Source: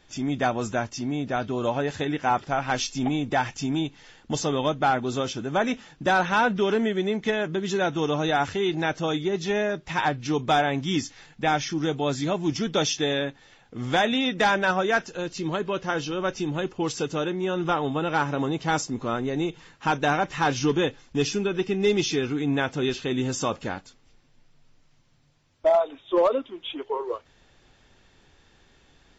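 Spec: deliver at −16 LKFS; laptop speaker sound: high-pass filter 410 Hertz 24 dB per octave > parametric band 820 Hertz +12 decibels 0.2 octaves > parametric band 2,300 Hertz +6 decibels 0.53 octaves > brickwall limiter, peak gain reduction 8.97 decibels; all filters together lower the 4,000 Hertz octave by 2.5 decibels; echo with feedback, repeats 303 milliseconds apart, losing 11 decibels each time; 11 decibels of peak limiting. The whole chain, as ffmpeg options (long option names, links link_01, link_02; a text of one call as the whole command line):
ffmpeg -i in.wav -af "equalizer=frequency=4000:width_type=o:gain=-4.5,alimiter=limit=-23.5dB:level=0:latency=1,highpass=frequency=410:width=0.5412,highpass=frequency=410:width=1.3066,equalizer=frequency=820:width_type=o:width=0.2:gain=12,equalizer=frequency=2300:width_type=o:width=0.53:gain=6,aecho=1:1:303|606|909:0.282|0.0789|0.0221,volume=18dB,alimiter=limit=-4.5dB:level=0:latency=1" out.wav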